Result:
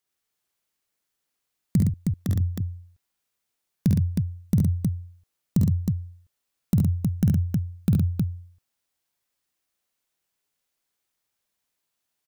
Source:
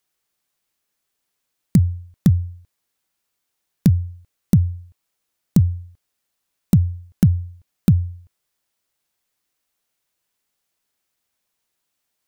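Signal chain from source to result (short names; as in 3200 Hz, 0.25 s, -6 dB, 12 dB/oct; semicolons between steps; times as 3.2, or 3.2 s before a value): 1.82–2.29 HPF 300 Hz 12 dB/oct; tapped delay 50/70/115/315 ms -5/-4.5/-5.5/-3.5 dB; gain -7.5 dB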